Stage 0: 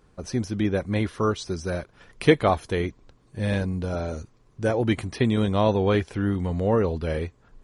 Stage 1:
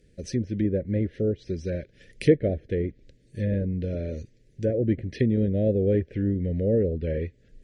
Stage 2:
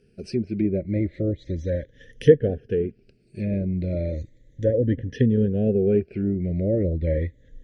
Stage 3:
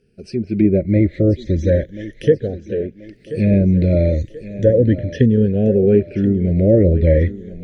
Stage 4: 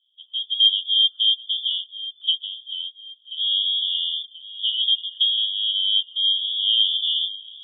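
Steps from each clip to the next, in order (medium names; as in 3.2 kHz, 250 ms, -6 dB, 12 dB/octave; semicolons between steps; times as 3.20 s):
low-pass that closes with the level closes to 1 kHz, closed at -21 dBFS; Chebyshev band-stop 560–1800 Hz, order 3
drifting ripple filter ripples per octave 1.1, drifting -0.35 Hz, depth 15 dB; treble shelf 5.3 kHz -10 dB
level rider gain up to 14 dB; thinning echo 1033 ms, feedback 47%, high-pass 200 Hz, level -13 dB; trim -1 dB
cascade formant filter u; frequency inversion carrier 3.5 kHz; trim +1.5 dB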